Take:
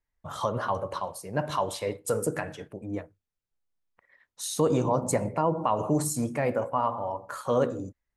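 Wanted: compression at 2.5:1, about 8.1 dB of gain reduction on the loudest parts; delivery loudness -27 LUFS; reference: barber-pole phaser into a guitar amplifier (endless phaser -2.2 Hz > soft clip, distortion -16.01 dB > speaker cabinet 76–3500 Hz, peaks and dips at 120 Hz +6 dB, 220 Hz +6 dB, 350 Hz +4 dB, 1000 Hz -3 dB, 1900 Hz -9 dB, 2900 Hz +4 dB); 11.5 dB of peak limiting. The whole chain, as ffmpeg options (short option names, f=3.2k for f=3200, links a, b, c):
-filter_complex "[0:a]acompressor=threshold=-32dB:ratio=2.5,alimiter=level_in=4.5dB:limit=-24dB:level=0:latency=1,volume=-4.5dB,asplit=2[a][b];[b]afreqshift=-2.2[c];[a][c]amix=inputs=2:normalize=1,asoftclip=threshold=-35.5dB,highpass=76,equalizer=f=120:t=q:w=4:g=6,equalizer=f=220:t=q:w=4:g=6,equalizer=f=350:t=q:w=4:g=4,equalizer=f=1k:t=q:w=4:g=-3,equalizer=f=1.9k:t=q:w=4:g=-9,equalizer=f=2.9k:t=q:w=4:g=4,lowpass=f=3.5k:w=0.5412,lowpass=f=3.5k:w=1.3066,volume=16dB"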